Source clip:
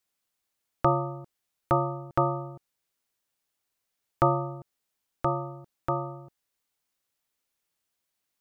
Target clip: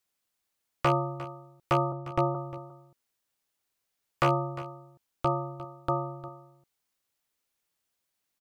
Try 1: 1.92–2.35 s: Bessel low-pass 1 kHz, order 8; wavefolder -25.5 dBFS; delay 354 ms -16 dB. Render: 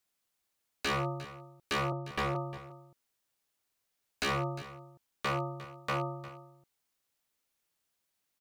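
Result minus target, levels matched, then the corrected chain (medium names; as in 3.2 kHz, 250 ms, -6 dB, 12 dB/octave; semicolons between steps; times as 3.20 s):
wavefolder: distortion +16 dB
1.92–2.35 s: Bessel low-pass 1 kHz, order 8; wavefolder -15.5 dBFS; delay 354 ms -16 dB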